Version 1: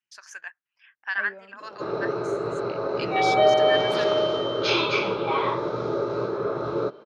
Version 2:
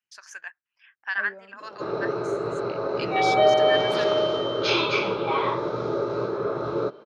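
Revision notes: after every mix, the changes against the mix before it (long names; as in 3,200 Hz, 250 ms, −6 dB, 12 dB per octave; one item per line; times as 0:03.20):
second voice: add parametric band 2,800 Hz −9 dB 1.1 octaves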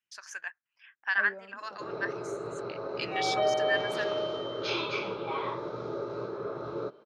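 background −9.0 dB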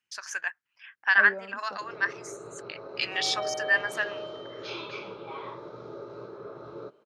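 first voice +7.0 dB
second voice +7.0 dB
background −6.0 dB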